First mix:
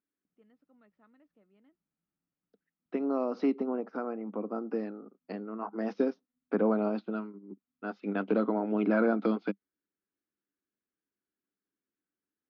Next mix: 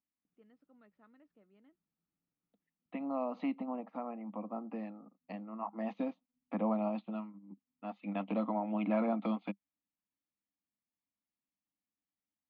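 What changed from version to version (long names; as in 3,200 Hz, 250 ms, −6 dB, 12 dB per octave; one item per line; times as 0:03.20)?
second voice: add phaser with its sweep stopped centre 1,500 Hz, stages 6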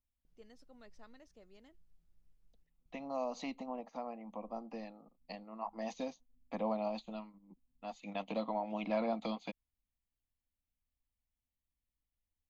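first voice +8.5 dB
master: remove loudspeaker in its box 170–2,800 Hz, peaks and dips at 200 Hz +9 dB, 290 Hz +9 dB, 1,300 Hz +7 dB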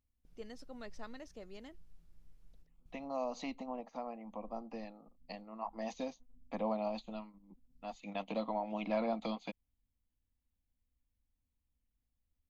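first voice +10.0 dB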